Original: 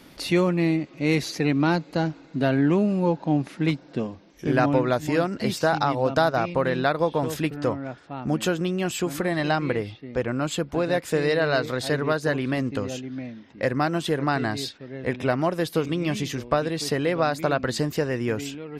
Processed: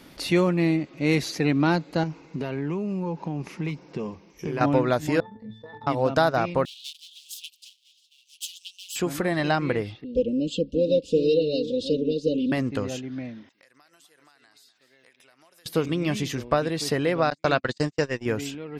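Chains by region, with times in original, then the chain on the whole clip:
2.03–4.61 ripple EQ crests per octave 0.79, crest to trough 8 dB + compressor, threshold -25 dBFS
5.2–5.87 octave resonator A, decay 0.39 s + transient shaper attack -7 dB, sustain -11 dB + fast leveller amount 50%
6.65–8.96 minimum comb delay 5.1 ms + steep high-pass 2900 Hz 72 dB/oct
10.04–12.52 Chebyshev band-stop 560–2800 Hz, order 5 + air absorption 130 m + comb 4 ms, depth 88%
13.49–15.66 differentiator + compressor 12:1, threshold -53 dBFS + echo 0.249 s -13.5 dB
17.3–18.26 steep low-pass 8200 Hz 48 dB/oct + gate -26 dBFS, range -43 dB + high shelf 2400 Hz +10 dB
whole clip: dry

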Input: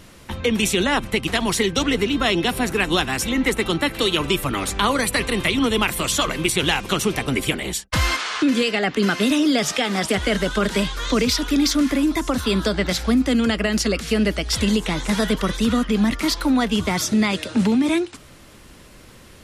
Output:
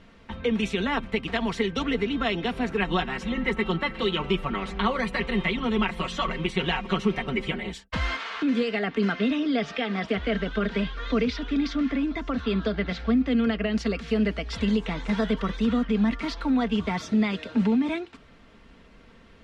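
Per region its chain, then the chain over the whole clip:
2.77–7.69 high shelf 5500 Hz -8 dB + comb 5.4 ms, depth 76%
9.12–13.75 LPF 4800 Hz + bell 930 Hz -6 dB 0.24 oct
whole clip: LPF 3100 Hz 12 dB/oct; comb 4.4 ms, depth 47%; gain -7 dB

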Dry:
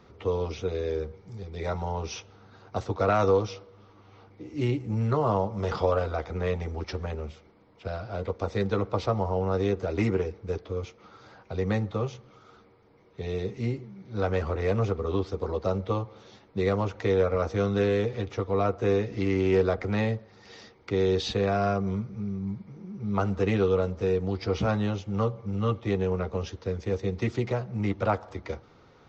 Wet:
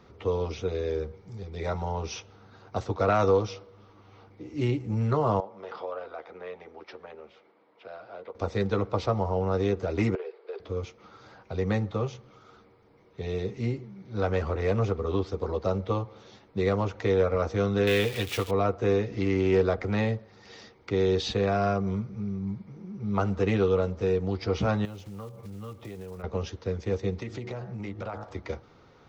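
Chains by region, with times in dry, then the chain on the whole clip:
5.4–8.35 compressor 1.5:1, threshold -45 dBFS + BPF 390–4400 Hz + air absorption 94 m
10.15–10.6 Chebyshev band-pass 380–4700 Hz, order 5 + compressor 5:1, threshold -32 dBFS
17.87–18.51 switching spikes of -32.5 dBFS + bell 2900 Hz +13 dB 1.5 oct
24.85–26.24 block floating point 5-bit + compressor 4:1, threshold -39 dBFS
27.2–28.24 de-hum 52.89 Hz, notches 36 + compressor 5:1, threshold -32 dBFS
whole clip: dry

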